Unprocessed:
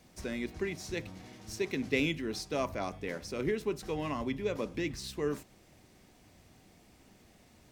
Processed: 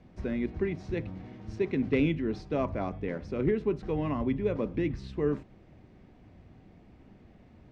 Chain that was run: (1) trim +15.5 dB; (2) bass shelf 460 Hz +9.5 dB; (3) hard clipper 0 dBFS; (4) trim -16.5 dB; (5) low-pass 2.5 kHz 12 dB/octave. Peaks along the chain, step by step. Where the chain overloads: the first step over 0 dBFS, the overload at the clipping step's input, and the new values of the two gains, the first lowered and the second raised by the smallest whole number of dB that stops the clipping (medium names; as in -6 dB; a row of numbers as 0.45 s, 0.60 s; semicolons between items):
+0.5 dBFS, +3.5 dBFS, 0.0 dBFS, -16.5 dBFS, -16.0 dBFS; step 1, 3.5 dB; step 1 +11.5 dB, step 4 -12.5 dB